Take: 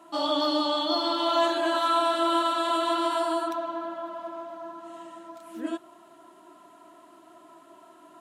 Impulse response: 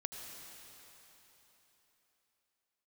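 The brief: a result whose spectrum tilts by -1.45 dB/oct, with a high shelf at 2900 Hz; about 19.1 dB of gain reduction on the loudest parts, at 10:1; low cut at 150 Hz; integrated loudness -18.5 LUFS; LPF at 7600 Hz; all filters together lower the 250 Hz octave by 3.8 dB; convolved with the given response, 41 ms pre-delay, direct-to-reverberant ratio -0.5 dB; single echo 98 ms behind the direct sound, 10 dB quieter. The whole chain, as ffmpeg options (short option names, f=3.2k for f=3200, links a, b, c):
-filter_complex "[0:a]highpass=150,lowpass=7.6k,equalizer=f=250:t=o:g=-5.5,highshelf=f=2.9k:g=6,acompressor=threshold=-40dB:ratio=10,aecho=1:1:98:0.316,asplit=2[a][b];[1:a]atrim=start_sample=2205,adelay=41[c];[b][c]afir=irnorm=-1:irlink=0,volume=1.5dB[d];[a][d]amix=inputs=2:normalize=0,volume=22dB"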